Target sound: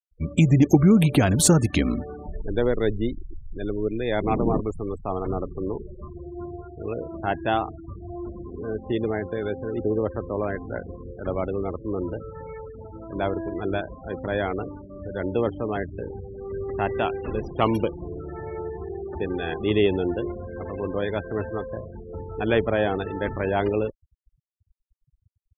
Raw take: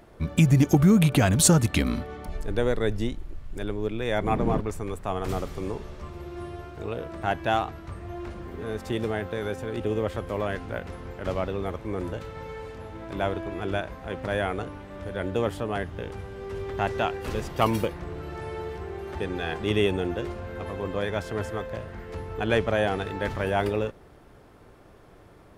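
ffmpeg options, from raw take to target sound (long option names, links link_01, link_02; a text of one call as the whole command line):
ffmpeg -i in.wav -af "afftfilt=real='re*gte(hypot(re,im),0.0251)':imag='im*gte(hypot(re,im),0.0251)':win_size=1024:overlap=0.75,adynamicequalizer=threshold=0.01:dfrequency=330:dqfactor=1.4:tfrequency=330:tqfactor=1.4:attack=5:release=100:ratio=0.375:range=2.5:mode=boostabove:tftype=bell" out.wav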